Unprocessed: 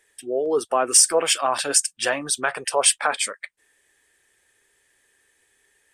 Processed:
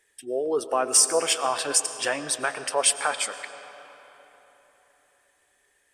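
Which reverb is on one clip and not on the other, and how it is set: algorithmic reverb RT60 3.9 s, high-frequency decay 0.65×, pre-delay 70 ms, DRR 11 dB; trim -3.5 dB

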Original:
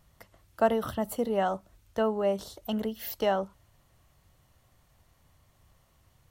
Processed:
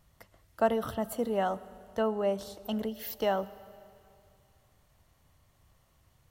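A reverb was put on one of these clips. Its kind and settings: algorithmic reverb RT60 2.5 s, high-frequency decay 1×, pre-delay 60 ms, DRR 18 dB; trim -2 dB

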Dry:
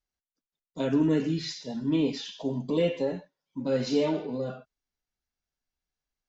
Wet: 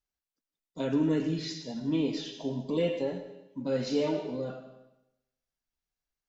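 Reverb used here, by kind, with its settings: algorithmic reverb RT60 0.9 s, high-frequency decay 1×, pre-delay 60 ms, DRR 10 dB; trim -3 dB

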